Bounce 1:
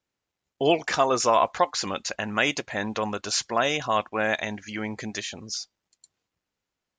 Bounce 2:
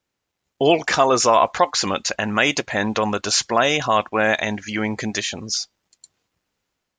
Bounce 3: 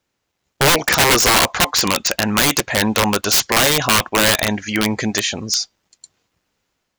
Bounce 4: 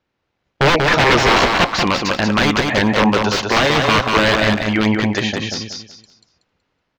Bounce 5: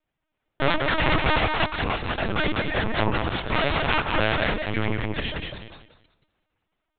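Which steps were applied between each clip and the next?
AGC gain up to 3.5 dB; in parallel at -2.5 dB: limiter -15.5 dBFS, peak gain reduction 11 dB
wrapped overs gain 12 dB; gain +5 dB
air absorption 210 m; on a send: feedback echo 0.187 s, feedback 28%, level -4 dB; on the sum: gain +2.5 dB
minimum comb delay 3.2 ms; LPC vocoder at 8 kHz pitch kept; gain -6 dB

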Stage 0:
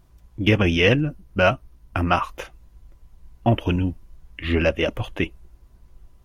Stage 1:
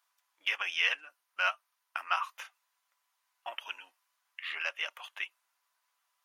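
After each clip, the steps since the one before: HPF 1000 Hz 24 dB/oct; gain -7 dB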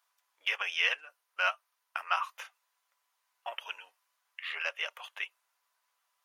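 resonant low shelf 360 Hz -6 dB, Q 3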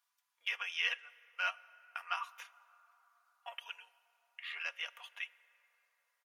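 HPF 1200 Hz 6 dB/oct; comb 4.2 ms, depth 45%; reverb RT60 4.1 s, pre-delay 18 ms, DRR 19.5 dB; gain -5.5 dB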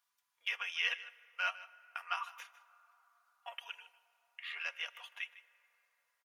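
echo 0.153 s -17 dB

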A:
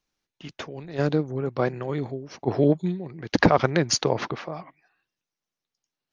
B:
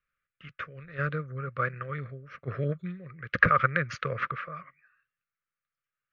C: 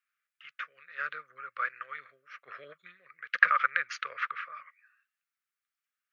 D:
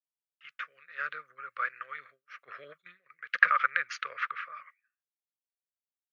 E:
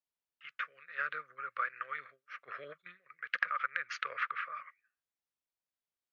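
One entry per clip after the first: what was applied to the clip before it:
EQ curve 140 Hz 0 dB, 320 Hz -18 dB, 540 Hz -2 dB, 870 Hz -30 dB, 1200 Hz +11 dB, 2400 Hz +3 dB, 4600 Hz -18 dB, 8300 Hz -24 dB; gain -4 dB
HPF 1400 Hz 12 dB/oct; gain +1.5 dB
expander -52 dBFS
high shelf 5800 Hz -11.5 dB; compressor 6:1, threshold -32 dBFS, peak gain reduction 16 dB; gain +2 dB

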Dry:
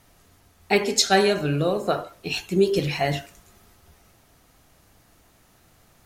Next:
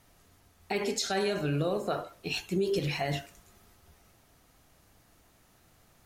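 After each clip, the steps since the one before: limiter -15.5 dBFS, peak gain reduction 10.5 dB; gain -5 dB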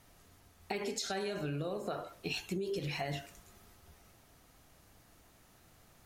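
compressor 6:1, threshold -34 dBFS, peak gain reduction 9.5 dB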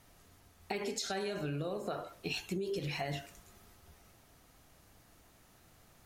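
nothing audible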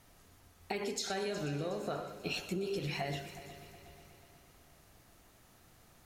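multi-head echo 0.122 s, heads first and third, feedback 61%, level -15 dB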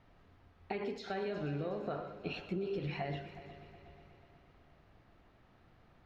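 air absorption 330 m

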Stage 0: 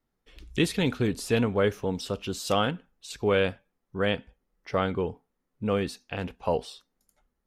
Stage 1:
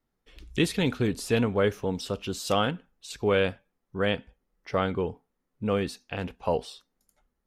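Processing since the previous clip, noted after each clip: nothing audible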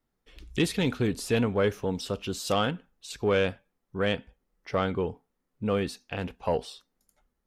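soft clip -13.5 dBFS, distortion -24 dB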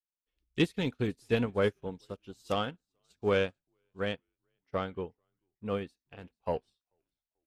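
frequency-shifting echo 0.439 s, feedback 44%, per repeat -72 Hz, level -20.5 dB; upward expander 2.5:1, over -43 dBFS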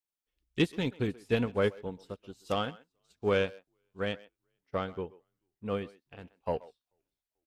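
speakerphone echo 0.13 s, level -19 dB

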